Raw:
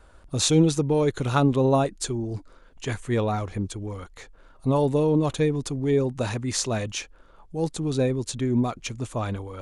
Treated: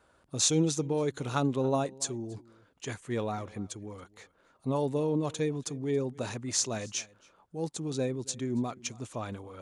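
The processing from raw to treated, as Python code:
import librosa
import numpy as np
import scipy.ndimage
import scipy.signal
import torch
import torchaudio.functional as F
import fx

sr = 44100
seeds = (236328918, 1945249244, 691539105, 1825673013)

y = scipy.signal.sosfilt(scipy.signal.butter(2, 120.0, 'highpass', fs=sr, output='sos'), x)
y = y + 10.0 ** (-22.0 / 20.0) * np.pad(y, (int(278 * sr / 1000.0), 0))[:len(y)]
y = fx.dynamic_eq(y, sr, hz=6400.0, q=1.5, threshold_db=-47.0, ratio=4.0, max_db=8)
y = y * librosa.db_to_amplitude(-7.5)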